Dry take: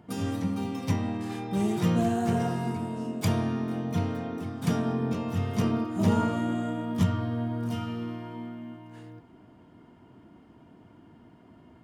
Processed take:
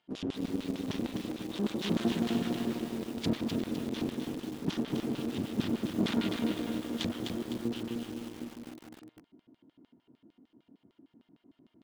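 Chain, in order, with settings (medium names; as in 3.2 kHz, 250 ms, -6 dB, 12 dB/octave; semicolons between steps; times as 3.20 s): Chebyshev shaper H 2 -12 dB, 6 -12 dB, 7 -30 dB, 8 -8 dB, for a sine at -12.5 dBFS; LFO band-pass square 6.6 Hz 280–3600 Hz; bit-crushed delay 254 ms, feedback 55%, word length 8-bit, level -3.5 dB; trim +1 dB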